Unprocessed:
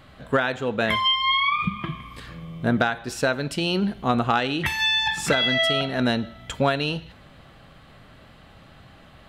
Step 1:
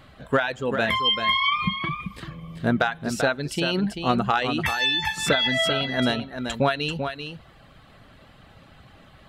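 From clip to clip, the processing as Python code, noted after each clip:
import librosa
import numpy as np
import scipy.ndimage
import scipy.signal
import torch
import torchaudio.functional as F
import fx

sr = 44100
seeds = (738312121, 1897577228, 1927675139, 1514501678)

y = fx.dereverb_blind(x, sr, rt60_s=0.77)
y = y + 10.0 ** (-7.5 / 20.0) * np.pad(y, (int(389 * sr / 1000.0), 0))[:len(y)]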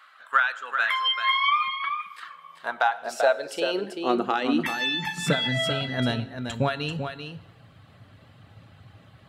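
y = fx.rev_plate(x, sr, seeds[0], rt60_s=1.1, hf_ratio=0.8, predelay_ms=0, drr_db=14.0)
y = fx.filter_sweep_highpass(y, sr, from_hz=1300.0, to_hz=100.0, start_s=2.23, end_s=5.91, q=3.5)
y = y * librosa.db_to_amplitude(-4.5)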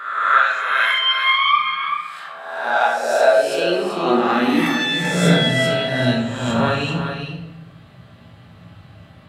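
y = fx.spec_swells(x, sr, rise_s=1.09)
y = fx.room_shoebox(y, sr, seeds[1], volume_m3=220.0, walls='mixed', distance_m=1.2)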